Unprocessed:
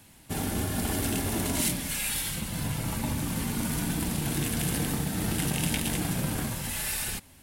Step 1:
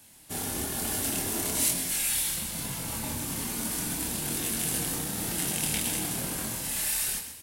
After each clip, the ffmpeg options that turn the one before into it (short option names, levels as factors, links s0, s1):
-filter_complex "[0:a]bass=f=250:g=-6,treble=f=4000:g=7,flanger=delay=22.5:depth=7.2:speed=1.1,asplit=6[s0][s1][s2][s3][s4][s5];[s1]adelay=128,afreqshift=38,volume=0.335[s6];[s2]adelay=256,afreqshift=76,volume=0.148[s7];[s3]adelay=384,afreqshift=114,volume=0.0646[s8];[s4]adelay=512,afreqshift=152,volume=0.0285[s9];[s5]adelay=640,afreqshift=190,volume=0.0126[s10];[s0][s6][s7][s8][s9][s10]amix=inputs=6:normalize=0"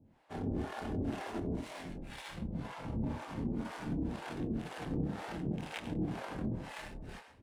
-filter_complex "[0:a]alimiter=limit=0.106:level=0:latency=1:release=31,adynamicsmooth=sensitivity=2:basefreq=1000,acrossover=split=540[s0][s1];[s0]aeval=exprs='val(0)*(1-1/2+1/2*cos(2*PI*2*n/s))':c=same[s2];[s1]aeval=exprs='val(0)*(1-1/2-1/2*cos(2*PI*2*n/s))':c=same[s3];[s2][s3]amix=inputs=2:normalize=0,volume=1.68"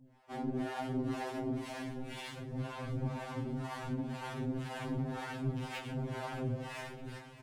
-af "asoftclip=type=hard:threshold=0.0266,aecho=1:1:615|1230|1845|2460|3075:0.158|0.0903|0.0515|0.0294|0.0167,afftfilt=real='re*2.45*eq(mod(b,6),0)':imag='im*2.45*eq(mod(b,6),0)':win_size=2048:overlap=0.75,volume=1.58"